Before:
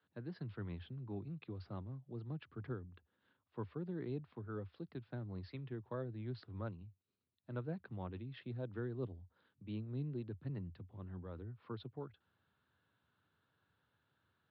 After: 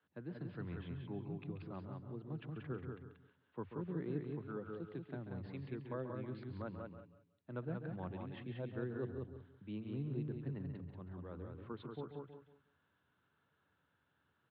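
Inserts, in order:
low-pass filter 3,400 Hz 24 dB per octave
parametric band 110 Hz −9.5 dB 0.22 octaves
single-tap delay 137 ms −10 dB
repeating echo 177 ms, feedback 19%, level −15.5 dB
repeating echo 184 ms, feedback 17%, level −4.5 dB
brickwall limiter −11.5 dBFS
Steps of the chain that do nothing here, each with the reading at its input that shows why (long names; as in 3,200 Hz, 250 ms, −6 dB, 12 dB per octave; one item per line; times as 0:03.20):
brickwall limiter −11.5 dBFS: peak of its input −27.5 dBFS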